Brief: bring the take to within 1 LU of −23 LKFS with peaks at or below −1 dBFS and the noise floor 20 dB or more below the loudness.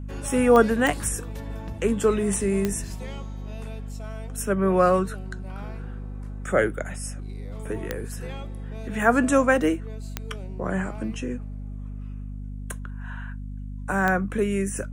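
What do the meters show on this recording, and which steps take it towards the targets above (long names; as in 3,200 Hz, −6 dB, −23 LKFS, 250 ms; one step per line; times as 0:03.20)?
number of clicks 6; mains hum 50 Hz; hum harmonics up to 250 Hz; level of the hum −32 dBFS; integrated loudness −24.5 LKFS; sample peak −4.5 dBFS; target loudness −23.0 LKFS
→ click removal
hum removal 50 Hz, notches 5
level +1.5 dB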